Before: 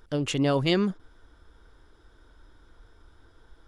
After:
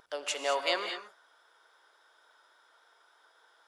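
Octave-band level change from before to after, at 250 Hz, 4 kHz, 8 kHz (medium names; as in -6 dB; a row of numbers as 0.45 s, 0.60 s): -23.0 dB, -1.5 dB, no reading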